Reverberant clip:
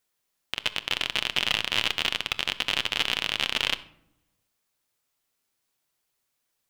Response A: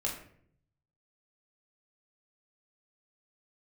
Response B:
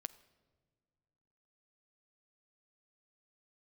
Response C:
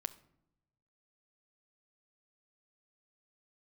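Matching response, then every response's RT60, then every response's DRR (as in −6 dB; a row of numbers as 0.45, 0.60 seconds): C; 0.60 s, non-exponential decay, non-exponential decay; −2.0, 13.5, 11.5 decibels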